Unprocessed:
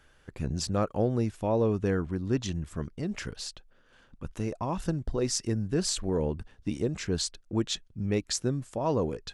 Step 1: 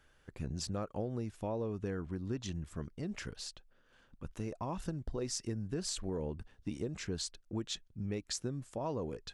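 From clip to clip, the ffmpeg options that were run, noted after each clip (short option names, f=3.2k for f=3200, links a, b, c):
-af "acompressor=threshold=-27dB:ratio=6,volume=-6dB"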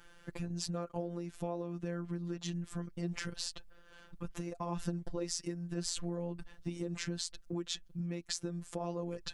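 -af "acompressor=threshold=-45dB:ratio=3,afftfilt=real='hypot(re,im)*cos(PI*b)':imag='0':win_size=1024:overlap=0.75,volume=11.5dB"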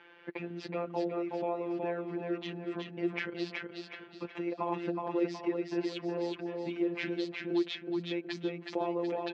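-filter_complex "[0:a]highpass=330,equalizer=f=350:t=q:w=4:g=7,equalizer=f=890:t=q:w=4:g=3,equalizer=f=1.3k:t=q:w=4:g=-4,equalizer=f=2.3k:t=q:w=4:g=6,lowpass=f=3.2k:w=0.5412,lowpass=f=3.2k:w=1.3066,asplit=2[a][b];[b]aecho=0:1:370|740|1110|1480|1850:0.668|0.261|0.102|0.0396|0.0155[c];[a][c]amix=inputs=2:normalize=0,volume=5dB"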